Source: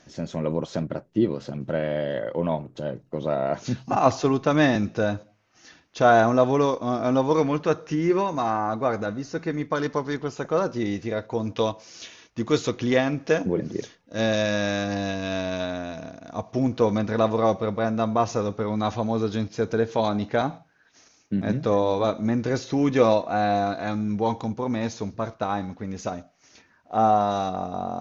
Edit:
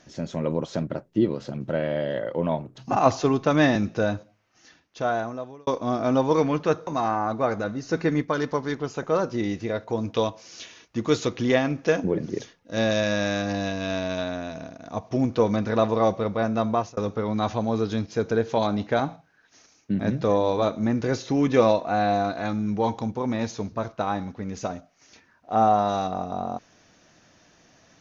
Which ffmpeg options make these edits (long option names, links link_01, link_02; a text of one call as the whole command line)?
ffmpeg -i in.wav -filter_complex "[0:a]asplit=7[link_01][link_02][link_03][link_04][link_05][link_06][link_07];[link_01]atrim=end=2.782[link_08];[link_02]atrim=start=3.778:end=6.67,asetpts=PTS-STARTPTS,afade=type=out:start_time=1.352:duration=1.54[link_09];[link_03]atrim=start=6.67:end=7.872,asetpts=PTS-STARTPTS,afade=type=in:duration=0.004:curve=hsin[link_10];[link_04]atrim=start=8.288:end=9.312[link_11];[link_05]atrim=start=9.308:end=9.642,asetpts=PTS-STARTPTS,volume=4.5dB[link_12];[link_06]atrim=start=9.638:end=18.39,asetpts=PTS-STARTPTS,afade=type=out:start_time=8.502:duration=0.25[link_13];[link_07]atrim=start=18.39,asetpts=PTS-STARTPTS,afade=type=in:duration=0.004:curve=hsin[link_14];[link_09][link_10]concat=n=2:v=0:a=1[link_15];[link_08][link_15]acrossfade=duration=0.004:curve1=hsin:curve2=hsin[link_16];[link_16][link_11]acrossfade=duration=0.004:curve1=hsin:curve2=hsin[link_17];[link_17][link_12]acrossfade=duration=0.004:curve1=hsin:curve2=hsin[link_18];[link_13][link_14]concat=n=2:v=0:a=1[link_19];[link_18][link_19]acrossfade=duration=0.004:curve1=hsin:curve2=hsin" out.wav